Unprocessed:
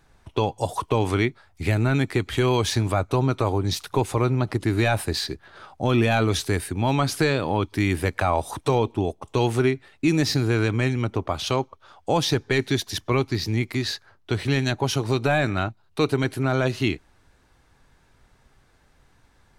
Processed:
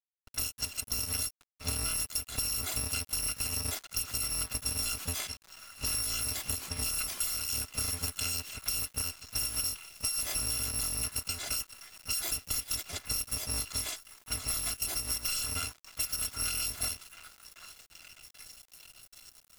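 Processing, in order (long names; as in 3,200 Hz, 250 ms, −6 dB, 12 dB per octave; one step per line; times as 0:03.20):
samples in bit-reversed order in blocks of 256 samples
low-pass that shuts in the quiet parts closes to 1,600 Hz, open at −21 dBFS
downward compressor 12 to 1, threshold −24 dBFS, peak gain reduction 9 dB
pitch-shifted copies added +12 semitones −12 dB
echo through a band-pass that steps 783 ms, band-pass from 1,300 Hz, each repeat 0.7 octaves, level −6 dB
centre clipping without the shift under −42 dBFS
level −5 dB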